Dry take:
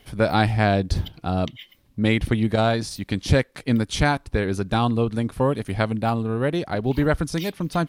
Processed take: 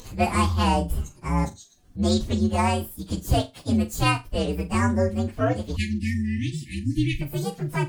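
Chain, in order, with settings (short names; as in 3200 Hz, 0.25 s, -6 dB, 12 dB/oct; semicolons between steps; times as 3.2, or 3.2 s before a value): inharmonic rescaling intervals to 130%; flutter echo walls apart 7.1 m, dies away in 0.21 s; upward compressor, threshold -34 dBFS; spectral delete 5.76–7.21, 350–1700 Hz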